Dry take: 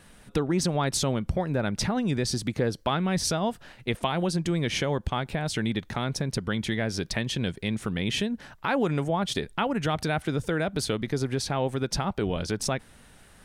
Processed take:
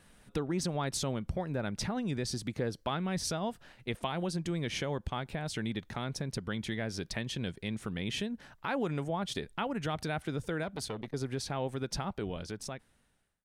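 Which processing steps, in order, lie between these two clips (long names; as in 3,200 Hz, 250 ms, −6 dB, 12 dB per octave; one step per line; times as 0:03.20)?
fade-out on the ending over 1.43 s
0:10.63–0:11.14: saturating transformer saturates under 920 Hz
level −7.5 dB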